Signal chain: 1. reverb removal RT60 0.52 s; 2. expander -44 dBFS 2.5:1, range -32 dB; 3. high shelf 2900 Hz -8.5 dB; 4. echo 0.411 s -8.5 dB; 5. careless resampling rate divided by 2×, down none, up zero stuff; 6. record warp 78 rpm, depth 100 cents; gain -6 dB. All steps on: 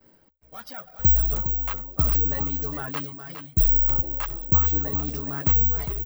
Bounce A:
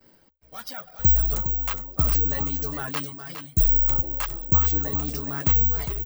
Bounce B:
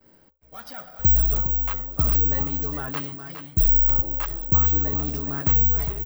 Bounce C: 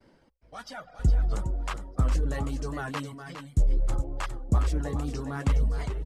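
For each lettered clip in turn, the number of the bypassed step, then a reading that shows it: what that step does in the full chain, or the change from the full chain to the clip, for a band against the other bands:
3, 8 kHz band +7.0 dB; 1, momentary loudness spread change -2 LU; 5, crest factor change -3.5 dB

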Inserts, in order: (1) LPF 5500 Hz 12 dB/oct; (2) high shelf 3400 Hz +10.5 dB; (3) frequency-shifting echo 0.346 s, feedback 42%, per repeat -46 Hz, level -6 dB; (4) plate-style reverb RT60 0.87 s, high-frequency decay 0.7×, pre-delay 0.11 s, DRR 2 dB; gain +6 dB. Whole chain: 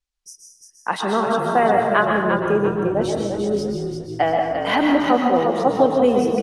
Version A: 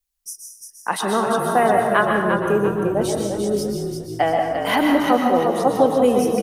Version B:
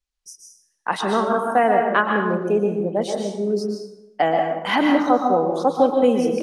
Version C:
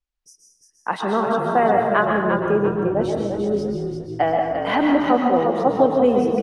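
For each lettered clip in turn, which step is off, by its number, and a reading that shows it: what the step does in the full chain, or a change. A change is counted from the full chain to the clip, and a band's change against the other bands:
1, 8 kHz band +7.5 dB; 3, echo-to-direct 0.5 dB to -2.0 dB; 2, 4 kHz band -5.0 dB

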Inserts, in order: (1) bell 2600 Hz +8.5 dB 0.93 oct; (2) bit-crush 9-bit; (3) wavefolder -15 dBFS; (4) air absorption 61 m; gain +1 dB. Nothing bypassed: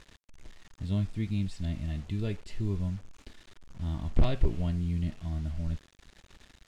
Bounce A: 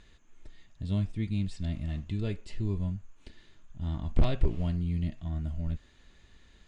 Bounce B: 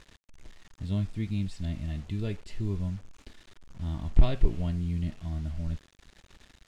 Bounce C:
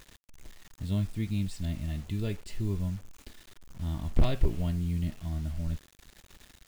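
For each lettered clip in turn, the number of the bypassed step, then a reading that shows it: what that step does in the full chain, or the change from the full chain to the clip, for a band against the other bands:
2, distortion -29 dB; 3, distortion -7 dB; 4, momentary loudness spread change +3 LU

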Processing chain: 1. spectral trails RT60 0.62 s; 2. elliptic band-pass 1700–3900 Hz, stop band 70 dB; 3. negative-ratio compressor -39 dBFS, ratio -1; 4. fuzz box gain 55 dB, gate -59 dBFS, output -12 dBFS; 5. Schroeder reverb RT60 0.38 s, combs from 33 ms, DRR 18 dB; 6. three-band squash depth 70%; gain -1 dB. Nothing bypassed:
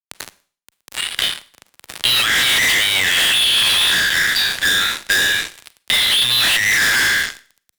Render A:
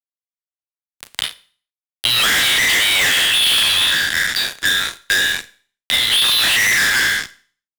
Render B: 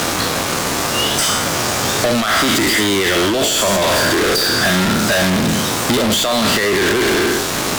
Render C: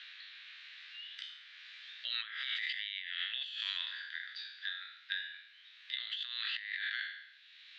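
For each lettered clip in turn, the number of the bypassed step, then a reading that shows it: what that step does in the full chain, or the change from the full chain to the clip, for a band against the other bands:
3, momentary loudness spread change +4 LU; 2, 4 kHz band -15.5 dB; 4, crest factor change +6.5 dB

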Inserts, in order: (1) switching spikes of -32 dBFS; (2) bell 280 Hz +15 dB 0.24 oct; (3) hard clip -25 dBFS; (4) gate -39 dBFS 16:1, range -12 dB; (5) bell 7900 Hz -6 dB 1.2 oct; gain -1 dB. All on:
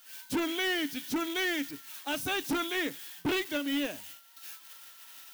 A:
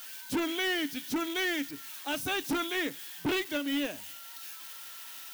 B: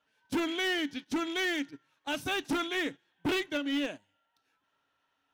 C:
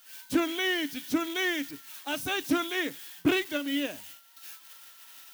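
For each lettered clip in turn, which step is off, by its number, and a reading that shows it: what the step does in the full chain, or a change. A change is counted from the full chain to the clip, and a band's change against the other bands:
4, momentary loudness spread change -4 LU; 1, distortion -9 dB; 3, distortion -9 dB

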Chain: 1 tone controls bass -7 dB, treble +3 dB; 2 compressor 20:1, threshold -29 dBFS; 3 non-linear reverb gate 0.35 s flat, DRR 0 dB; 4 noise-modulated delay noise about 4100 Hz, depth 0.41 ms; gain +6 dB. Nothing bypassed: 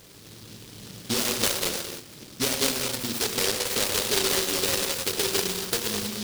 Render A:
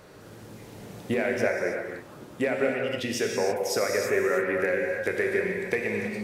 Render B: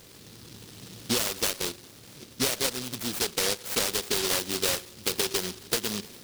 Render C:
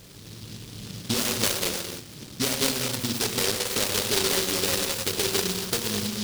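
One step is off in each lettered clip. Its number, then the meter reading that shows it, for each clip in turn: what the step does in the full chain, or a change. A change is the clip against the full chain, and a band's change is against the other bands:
4, 4 kHz band -14.5 dB; 3, momentary loudness spread change +1 LU; 1, 125 Hz band +4.5 dB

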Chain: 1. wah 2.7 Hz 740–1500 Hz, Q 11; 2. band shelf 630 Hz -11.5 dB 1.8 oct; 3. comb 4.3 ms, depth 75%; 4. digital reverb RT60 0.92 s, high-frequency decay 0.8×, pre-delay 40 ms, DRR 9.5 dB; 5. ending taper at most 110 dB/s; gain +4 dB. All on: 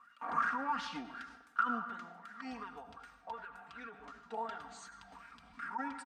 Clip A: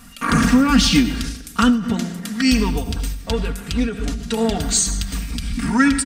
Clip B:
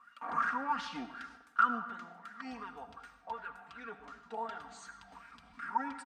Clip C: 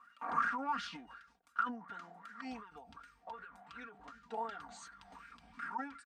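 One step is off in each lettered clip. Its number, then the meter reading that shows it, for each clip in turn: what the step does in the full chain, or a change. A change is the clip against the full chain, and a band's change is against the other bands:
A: 1, 1 kHz band -19.0 dB; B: 5, crest factor change +2.0 dB; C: 4, momentary loudness spread change +2 LU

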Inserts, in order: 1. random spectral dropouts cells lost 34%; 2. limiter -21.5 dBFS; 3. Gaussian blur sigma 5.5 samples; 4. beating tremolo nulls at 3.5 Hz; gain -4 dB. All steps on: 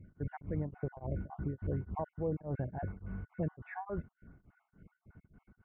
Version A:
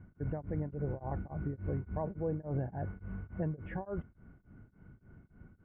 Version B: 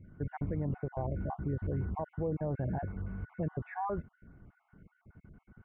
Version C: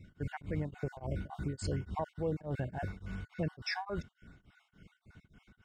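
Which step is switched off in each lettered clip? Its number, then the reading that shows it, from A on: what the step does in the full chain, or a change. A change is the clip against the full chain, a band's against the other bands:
1, 1 kHz band -2.0 dB; 4, 1 kHz band +2.5 dB; 3, 2 kHz band +7.5 dB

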